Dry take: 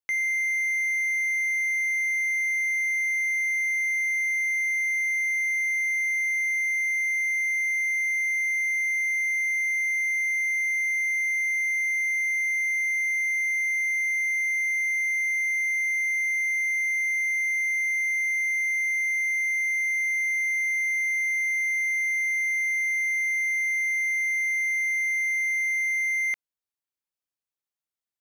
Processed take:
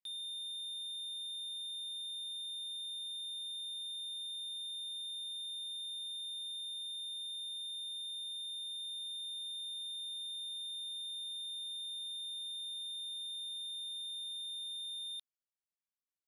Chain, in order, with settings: soft clip -33 dBFS, distortion -10 dB; downsampling 16000 Hz; speed mistake 45 rpm record played at 78 rpm; gain -8.5 dB

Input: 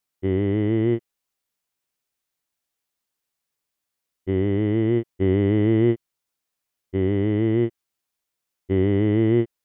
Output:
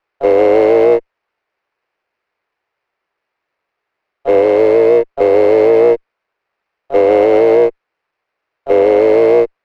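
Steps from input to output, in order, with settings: harmoniser +7 st -11 dB; mistuned SSB +120 Hz 230–2500 Hz; maximiser +17.5 dB; running maximum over 5 samples; gain -1 dB

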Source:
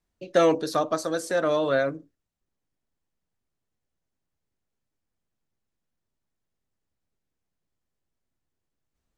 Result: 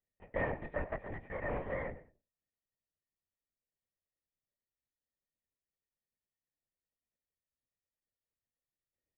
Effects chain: minimum comb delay 1 ms; vocal tract filter e; bell 150 Hz +12 dB 0.29 oct; feedback echo 0.105 s, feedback 24%, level -17 dB; LPC vocoder at 8 kHz whisper; gain +2 dB

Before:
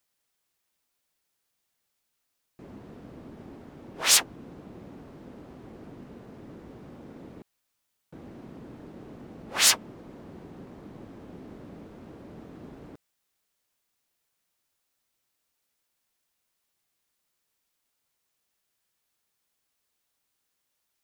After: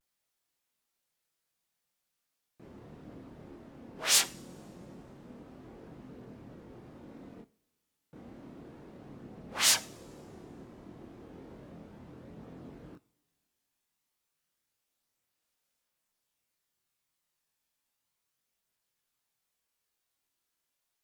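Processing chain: two-slope reverb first 0.42 s, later 2.2 s, from -21 dB, DRR 14.5 dB; chorus voices 2, 0.16 Hz, delay 26 ms, depth 3.2 ms; vibrato 0.72 Hz 63 cents; gain -1.5 dB

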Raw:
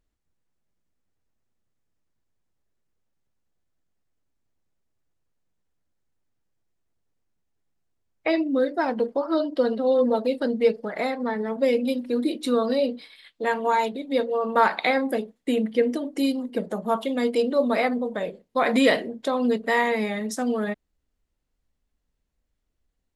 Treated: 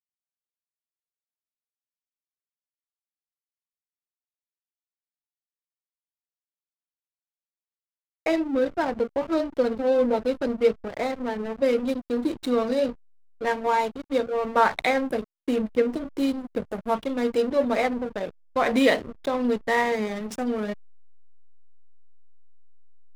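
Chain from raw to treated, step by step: dynamic EQ 110 Hz, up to -8 dB, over -48 dBFS, Q 1.7; backlash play -26.5 dBFS

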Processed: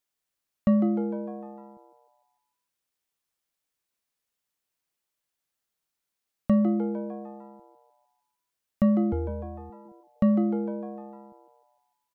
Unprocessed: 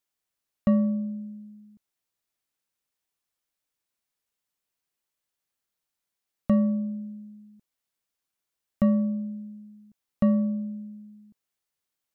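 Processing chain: 9.12–9.7 frequency shift -290 Hz; frequency-shifting echo 0.151 s, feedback 53%, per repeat +130 Hz, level -10 dB

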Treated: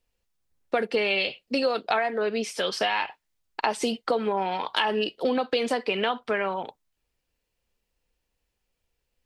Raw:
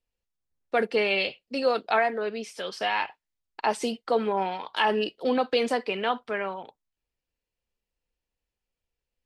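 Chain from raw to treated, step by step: dynamic EQ 3400 Hz, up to +3 dB, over -40 dBFS, Q 1.8; compressor, threshold -30 dBFS, peak gain reduction 11.5 dB; gain +8 dB

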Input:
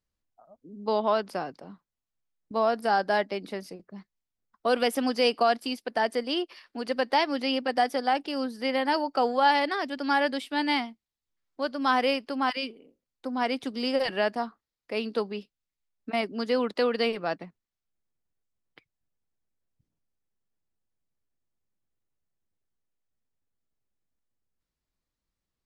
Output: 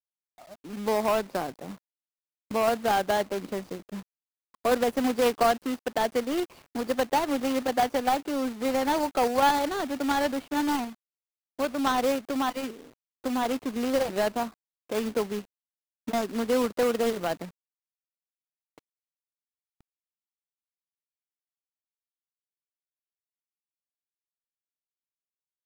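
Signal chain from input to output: median filter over 25 samples; in parallel at 0 dB: compressor 12:1, threshold -37 dBFS, peak gain reduction 18.5 dB; on the sum: companded quantiser 4-bit

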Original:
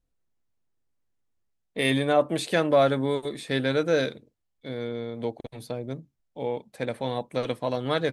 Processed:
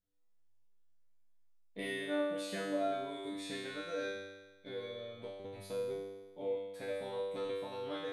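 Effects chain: compressor, threshold -30 dBFS, peak gain reduction 14 dB; resonator 98 Hz, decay 1.2 s, harmonics all, mix 100%; gain +11 dB

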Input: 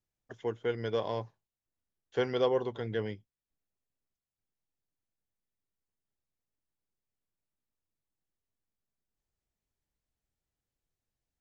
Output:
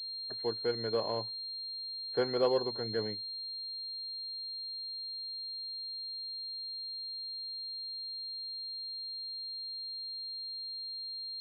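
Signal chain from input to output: HPF 170 Hz 6 dB/oct; pulse-width modulation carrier 4200 Hz

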